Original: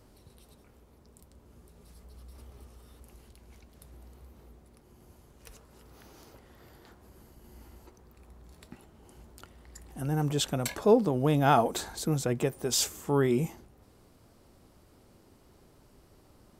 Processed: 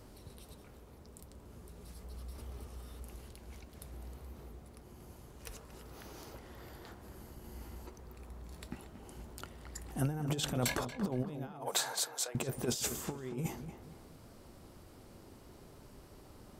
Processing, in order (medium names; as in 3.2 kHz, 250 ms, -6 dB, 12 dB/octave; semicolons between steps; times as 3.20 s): compressor with a negative ratio -32 dBFS, ratio -0.5; 11.48–12.35 s: high-pass 540 Hz 24 dB/octave; on a send: filtered feedback delay 232 ms, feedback 39%, low-pass 2.6 kHz, level -10 dB; on the sum: trim -2.5 dB